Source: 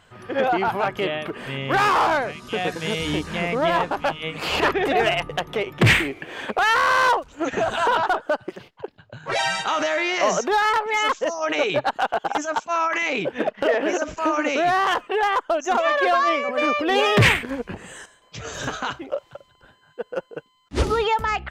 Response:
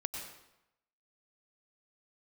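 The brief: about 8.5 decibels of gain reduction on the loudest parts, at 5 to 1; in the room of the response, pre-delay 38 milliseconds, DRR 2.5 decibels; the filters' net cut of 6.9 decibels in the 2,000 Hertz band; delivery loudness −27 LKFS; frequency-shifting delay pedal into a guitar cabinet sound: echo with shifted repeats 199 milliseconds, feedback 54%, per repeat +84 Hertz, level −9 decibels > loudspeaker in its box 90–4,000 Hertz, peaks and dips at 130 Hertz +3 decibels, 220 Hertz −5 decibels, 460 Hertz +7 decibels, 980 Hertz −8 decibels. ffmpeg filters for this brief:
-filter_complex "[0:a]equalizer=frequency=2000:width_type=o:gain=-8.5,acompressor=threshold=-22dB:ratio=5,asplit=2[link_01][link_02];[1:a]atrim=start_sample=2205,adelay=38[link_03];[link_02][link_03]afir=irnorm=-1:irlink=0,volume=-3.5dB[link_04];[link_01][link_04]amix=inputs=2:normalize=0,asplit=7[link_05][link_06][link_07][link_08][link_09][link_10][link_11];[link_06]adelay=199,afreqshift=84,volume=-9dB[link_12];[link_07]adelay=398,afreqshift=168,volume=-14.4dB[link_13];[link_08]adelay=597,afreqshift=252,volume=-19.7dB[link_14];[link_09]adelay=796,afreqshift=336,volume=-25.1dB[link_15];[link_10]adelay=995,afreqshift=420,volume=-30.4dB[link_16];[link_11]adelay=1194,afreqshift=504,volume=-35.8dB[link_17];[link_05][link_12][link_13][link_14][link_15][link_16][link_17]amix=inputs=7:normalize=0,highpass=90,equalizer=frequency=130:width_type=q:width=4:gain=3,equalizer=frequency=220:width_type=q:width=4:gain=-5,equalizer=frequency=460:width_type=q:width=4:gain=7,equalizer=frequency=980:width_type=q:width=4:gain=-8,lowpass=frequency=4000:width=0.5412,lowpass=frequency=4000:width=1.3066,volume=-2.5dB"

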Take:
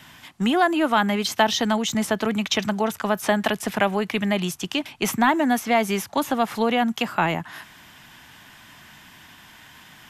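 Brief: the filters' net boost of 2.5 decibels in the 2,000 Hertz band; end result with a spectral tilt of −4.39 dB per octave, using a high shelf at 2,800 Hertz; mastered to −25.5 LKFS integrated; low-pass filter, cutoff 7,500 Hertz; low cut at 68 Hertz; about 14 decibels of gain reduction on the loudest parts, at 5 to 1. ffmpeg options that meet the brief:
ffmpeg -i in.wav -af "highpass=68,lowpass=7500,equalizer=frequency=2000:width_type=o:gain=5,highshelf=frequency=2800:gain=-5,acompressor=threshold=-30dB:ratio=5,volume=8dB" out.wav

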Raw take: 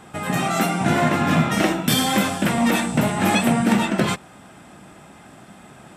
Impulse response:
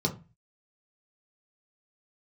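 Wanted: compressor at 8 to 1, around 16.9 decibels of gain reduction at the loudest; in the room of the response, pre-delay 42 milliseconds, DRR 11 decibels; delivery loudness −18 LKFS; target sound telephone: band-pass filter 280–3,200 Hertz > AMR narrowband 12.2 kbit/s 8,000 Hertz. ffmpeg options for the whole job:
-filter_complex "[0:a]acompressor=threshold=-32dB:ratio=8,asplit=2[link_01][link_02];[1:a]atrim=start_sample=2205,adelay=42[link_03];[link_02][link_03]afir=irnorm=-1:irlink=0,volume=-18.5dB[link_04];[link_01][link_04]amix=inputs=2:normalize=0,highpass=280,lowpass=3200,volume=20.5dB" -ar 8000 -c:a libopencore_amrnb -b:a 12200

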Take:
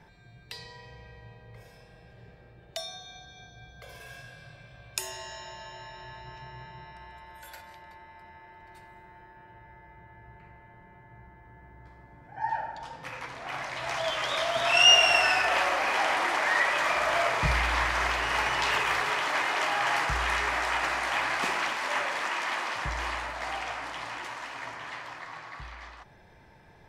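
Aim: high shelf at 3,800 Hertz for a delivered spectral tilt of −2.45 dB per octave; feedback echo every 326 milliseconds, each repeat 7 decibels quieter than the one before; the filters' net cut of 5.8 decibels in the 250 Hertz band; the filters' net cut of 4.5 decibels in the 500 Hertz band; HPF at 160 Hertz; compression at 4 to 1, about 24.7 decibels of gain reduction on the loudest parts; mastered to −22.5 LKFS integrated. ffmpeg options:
ffmpeg -i in.wav -af "highpass=160,equalizer=frequency=250:width_type=o:gain=-5,equalizer=frequency=500:width_type=o:gain=-5.5,highshelf=frequency=3800:gain=-8,acompressor=threshold=-48dB:ratio=4,aecho=1:1:326|652|978|1304|1630:0.447|0.201|0.0905|0.0407|0.0183,volume=25dB" out.wav

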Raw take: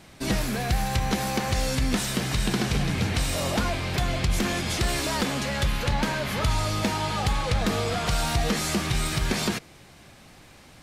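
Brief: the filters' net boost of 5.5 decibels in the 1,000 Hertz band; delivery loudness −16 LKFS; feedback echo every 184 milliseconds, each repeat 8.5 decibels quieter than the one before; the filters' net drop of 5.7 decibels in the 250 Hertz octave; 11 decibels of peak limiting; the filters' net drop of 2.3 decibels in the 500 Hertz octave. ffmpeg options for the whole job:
ffmpeg -i in.wav -af "equalizer=frequency=250:width_type=o:gain=-7.5,equalizer=frequency=500:width_type=o:gain=-4.5,equalizer=frequency=1000:width_type=o:gain=9,alimiter=limit=-20dB:level=0:latency=1,aecho=1:1:184|368|552|736:0.376|0.143|0.0543|0.0206,volume=12dB" out.wav

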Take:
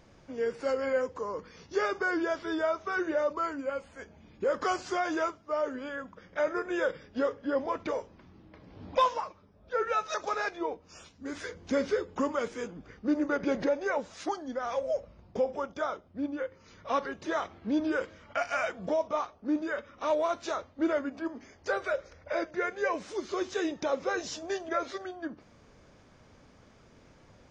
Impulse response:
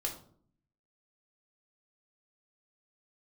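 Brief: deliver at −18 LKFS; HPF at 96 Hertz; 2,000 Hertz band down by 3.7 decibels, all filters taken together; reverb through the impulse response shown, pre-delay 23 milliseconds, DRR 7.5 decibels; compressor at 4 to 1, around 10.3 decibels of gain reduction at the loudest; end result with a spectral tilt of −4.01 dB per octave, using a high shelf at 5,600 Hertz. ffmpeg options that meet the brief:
-filter_complex "[0:a]highpass=96,equalizer=frequency=2000:width_type=o:gain=-6,highshelf=frequency=5600:gain=4.5,acompressor=threshold=-35dB:ratio=4,asplit=2[link_01][link_02];[1:a]atrim=start_sample=2205,adelay=23[link_03];[link_02][link_03]afir=irnorm=-1:irlink=0,volume=-9.5dB[link_04];[link_01][link_04]amix=inputs=2:normalize=0,volume=20.5dB"

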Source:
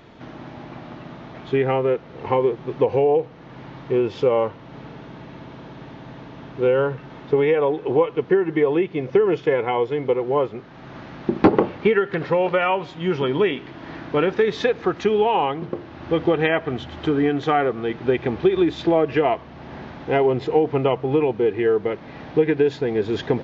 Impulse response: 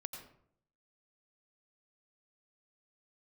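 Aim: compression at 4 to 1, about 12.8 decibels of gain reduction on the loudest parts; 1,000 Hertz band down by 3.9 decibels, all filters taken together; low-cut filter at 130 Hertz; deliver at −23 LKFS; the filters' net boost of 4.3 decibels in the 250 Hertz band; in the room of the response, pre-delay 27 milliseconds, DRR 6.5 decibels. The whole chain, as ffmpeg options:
-filter_complex "[0:a]highpass=130,equalizer=frequency=250:width_type=o:gain=7,equalizer=frequency=1000:width_type=o:gain=-6,acompressor=threshold=-21dB:ratio=4,asplit=2[link_01][link_02];[1:a]atrim=start_sample=2205,adelay=27[link_03];[link_02][link_03]afir=irnorm=-1:irlink=0,volume=-4dB[link_04];[link_01][link_04]amix=inputs=2:normalize=0,volume=2dB"

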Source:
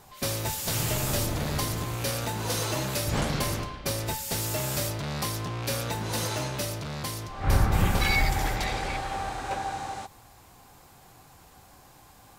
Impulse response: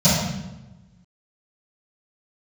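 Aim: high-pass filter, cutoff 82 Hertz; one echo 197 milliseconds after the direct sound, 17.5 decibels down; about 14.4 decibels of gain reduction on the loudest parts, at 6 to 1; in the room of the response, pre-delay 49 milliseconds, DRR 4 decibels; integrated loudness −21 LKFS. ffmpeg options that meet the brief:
-filter_complex "[0:a]highpass=82,acompressor=threshold=-37dB:ratio=6,aecho=1:1:197:0.133,asplit=2[link_01][link_02];[1:a]atrim=start_sample=2205,adelay=49[link_03];[link_02][link_03]afir=irnorm=-1:irlink=0,volume=-24.5dB[link_04];[link_01][link_04]amix=inputs=2:normalize=0,volume=12.5dB"

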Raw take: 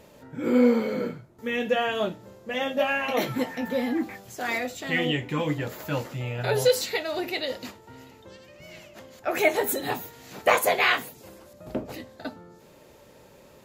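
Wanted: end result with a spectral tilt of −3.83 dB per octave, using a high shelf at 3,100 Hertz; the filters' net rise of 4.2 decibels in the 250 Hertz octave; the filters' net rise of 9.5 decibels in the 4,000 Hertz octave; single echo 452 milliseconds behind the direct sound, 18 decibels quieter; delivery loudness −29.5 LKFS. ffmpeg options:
ffmpeg -i in.wav -af "equalizer=frequency=250:width_type=o:gain=4.5,highshelf=frequency=3100:gain=5,equalizer=frequency=4000:width_type=o:gain=8.5,aecho=1:1:452:0.126,volume=-7dB" out.wav

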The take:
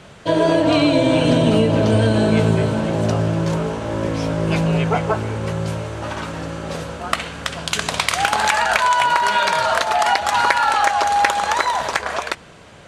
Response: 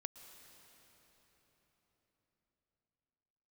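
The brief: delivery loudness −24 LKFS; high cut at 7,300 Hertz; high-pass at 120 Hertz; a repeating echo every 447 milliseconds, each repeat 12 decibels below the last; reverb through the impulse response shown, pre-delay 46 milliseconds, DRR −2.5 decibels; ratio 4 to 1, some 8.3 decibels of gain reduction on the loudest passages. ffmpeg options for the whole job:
-filter_complex "[0:a]highpass=120,lowpass=7300,acompressor=threshold=-22dB:ratio=4,aecho=1:1:447|894|1341:0.251|0.0628|0.0157,asplit=2[link_01][link_02];[1:a]atrim=start_sample=2205,adelay=46[link_03];[link_02][link_03]afir=irnorm=-1:irlink=0,volume=6dB[link_04];[link_01][link_04]amix=inputs=2:normalize=0,volume=-3dB"

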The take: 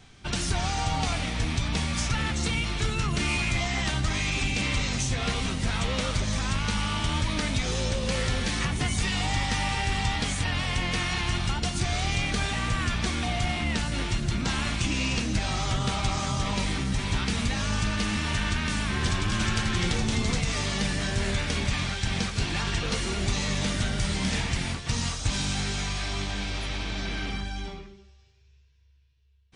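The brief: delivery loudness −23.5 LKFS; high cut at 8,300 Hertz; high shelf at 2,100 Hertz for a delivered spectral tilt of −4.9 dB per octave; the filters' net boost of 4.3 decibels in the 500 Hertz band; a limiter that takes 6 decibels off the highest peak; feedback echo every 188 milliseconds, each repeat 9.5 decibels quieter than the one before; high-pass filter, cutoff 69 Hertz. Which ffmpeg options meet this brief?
ffmpeg -i in.wav -af "highpass=69,lowpass=8300,equalizer=frequency=500:width_type=o:gain=6,highshelf=frequency=2100:gain=-9,alimiter=limit=-20.5dB:level=0:latency=1,aecho=1:1:188|376|564|752:0.335|0.111|0.0365|0.012,volume=7dB" out.wav

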